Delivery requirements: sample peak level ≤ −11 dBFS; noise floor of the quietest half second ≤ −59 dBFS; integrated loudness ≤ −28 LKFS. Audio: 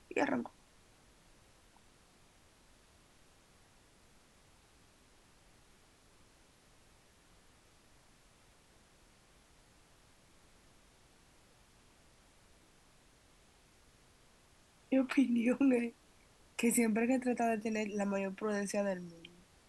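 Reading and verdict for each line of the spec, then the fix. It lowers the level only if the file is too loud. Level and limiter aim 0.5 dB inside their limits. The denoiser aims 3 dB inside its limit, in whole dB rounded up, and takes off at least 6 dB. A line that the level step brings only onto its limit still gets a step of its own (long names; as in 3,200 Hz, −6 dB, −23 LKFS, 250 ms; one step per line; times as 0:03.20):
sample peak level −19.0 dBFS: in spec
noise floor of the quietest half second −65 dBFS: in spec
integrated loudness −34.0 LKFS: in spec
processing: no processing needed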